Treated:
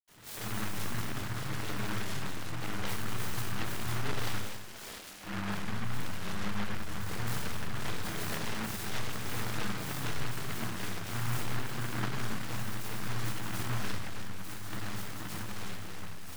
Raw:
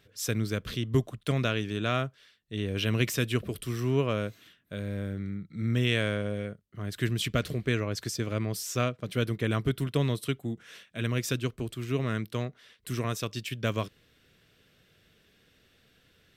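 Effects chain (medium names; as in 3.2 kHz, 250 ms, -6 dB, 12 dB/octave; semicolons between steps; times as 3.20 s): 7.83–8.56 s: comb filter that takes the minimum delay 4.2 ms; upward compressor, threshold -44 dBFS; peak limiter -28 dBFS, peak gain reduction 17.5 dB; level held to a coarse grid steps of 10 dB; saturation -39 dBFS, distortion -11 dB; ever faster or slower copies 100 ms, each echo -2 st, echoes 3; 4.26–5.15 s: band-pass 700–6600 Hz; reverberation RT60 1.0 s, pre-delay 77 ms; delay time shaken by noise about 1.2 kHz, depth 0.48 ms; trim +4 dB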